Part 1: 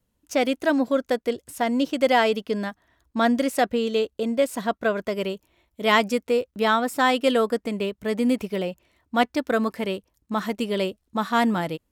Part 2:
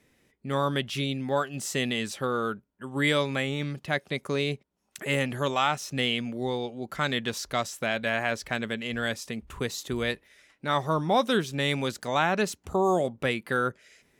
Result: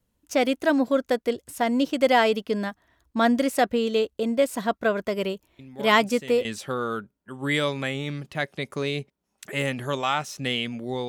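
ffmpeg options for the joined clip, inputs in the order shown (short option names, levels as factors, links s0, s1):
-filter_complex "[1:a]asplit=2[s0][s1];[0:a]apad=whole_dur=11.08,atrim=end=11.08,atrim=end=6.452[s2];[s1]atrim=start=1.978:end=6.61[s3];[s0]atrim=start=1.12:end=1.98,asetpts=PTS-STARTPTS,volume=0.251,afade=t=in:d=0.004:c=hsin,afade=t=out:st=0.856:d=0.004:c=hsin,adelay=5590[s4];[s2][s3]acrossfade=d=0.004:c1=hsin:c2=hsin[s5];[s5][s4]amix=inputs=2:normalize=0"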